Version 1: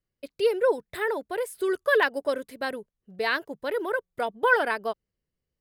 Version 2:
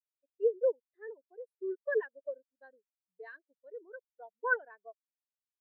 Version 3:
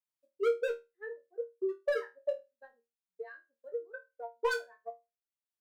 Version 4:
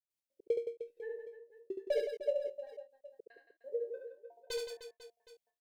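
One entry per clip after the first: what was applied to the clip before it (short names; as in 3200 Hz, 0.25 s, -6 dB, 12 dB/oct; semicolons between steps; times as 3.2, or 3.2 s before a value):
low shelf 160 Hz -6.5 dB; spectral expander 2.5:1; gain -8.5 dB
overloaded stage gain 30.5 dB; transient shaper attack +10 dB, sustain -5 dB; resonator bank D#2 fifth, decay 0.23 s; gain +7.5 dB
step gate ".x.x.x..xxxxx." 150 bpm -60 dB; Butterworth band-stop 1300 Hz, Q 1; on a send: reverse bouncing-ball echo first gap 70 ms, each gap 1.4×, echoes 5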